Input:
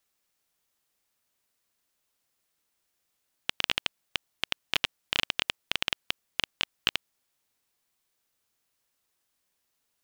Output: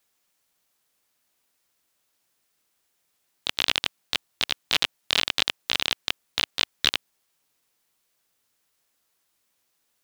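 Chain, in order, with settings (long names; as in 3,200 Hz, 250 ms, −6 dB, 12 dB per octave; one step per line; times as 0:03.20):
pitch-shifted copies added +4 semitones −1 dB
low-shelf EQ 84 Hz −6 dB
level +3 dB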